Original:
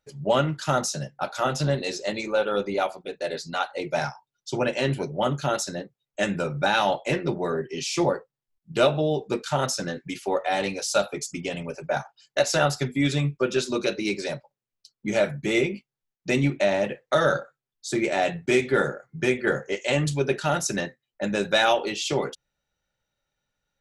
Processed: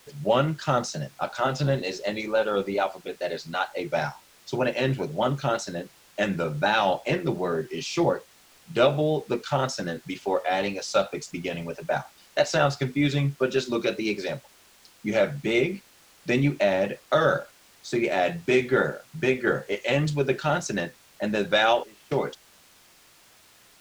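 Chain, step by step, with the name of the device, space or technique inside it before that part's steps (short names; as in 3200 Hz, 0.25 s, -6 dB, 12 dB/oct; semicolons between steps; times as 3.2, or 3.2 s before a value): worn cassette (LPF 6500 Hz; wow and flutter; level dips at 21.84, 0.272 s -21 dB; white noise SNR 25 dB); high shelf 9200 Hz -11.5 dB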